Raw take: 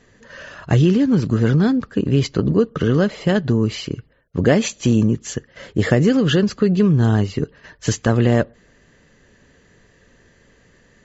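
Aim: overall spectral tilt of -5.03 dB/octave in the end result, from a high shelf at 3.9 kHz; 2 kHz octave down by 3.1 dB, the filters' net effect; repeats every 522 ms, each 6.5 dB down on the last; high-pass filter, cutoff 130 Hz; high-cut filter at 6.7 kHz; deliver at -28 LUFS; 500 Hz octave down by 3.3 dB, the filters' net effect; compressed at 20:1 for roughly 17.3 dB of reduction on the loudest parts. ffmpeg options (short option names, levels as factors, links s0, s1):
-af "highpass=130,lowpass=6700,equalizer=f=500:t=o:g=-4,equalizer=f=2000:t=o:g=-5,highshelf=f=3900:g=5.5,acompressor=threshold=0.0316:ratio=20,aecho=1:1:522|1044|1566|2088|2610|3132:0.473|0.222|0.105|0.0491|0.0231|0.0109,volume=2.24"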